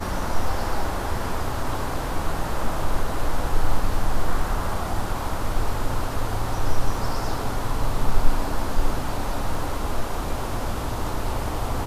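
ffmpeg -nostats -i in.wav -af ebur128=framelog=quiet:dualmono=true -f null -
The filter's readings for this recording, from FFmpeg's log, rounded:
Integrated loudness:
  I:         -25.5 LUFS
  Threshold: -35.5 LUFS
Loudness range:
  LRA:         0.6 LU
  Threshold: -45.4 LUFS
  LRA low:   -25.8 LUFS
  LRA high:  -25.2 LUFS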